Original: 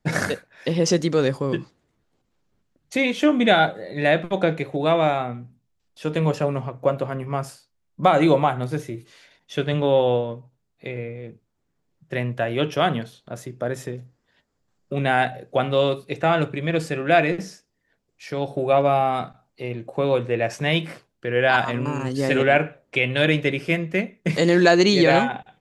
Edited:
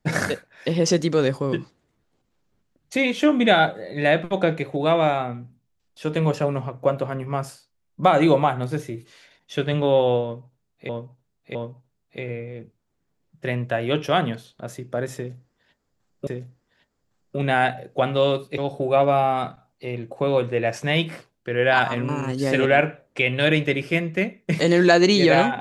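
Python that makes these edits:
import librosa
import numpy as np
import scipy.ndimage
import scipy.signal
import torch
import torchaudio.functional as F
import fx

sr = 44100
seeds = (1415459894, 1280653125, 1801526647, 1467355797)

y = fx.edit(x, sr, fx.repeat(start_s=10.23, length_s=0.66, count=3),
    fx.repeat(start_s=13.84, length_s=1.11, count=2),
    fx.cut(start_s=16.15, length_s=2.2), tone=tone)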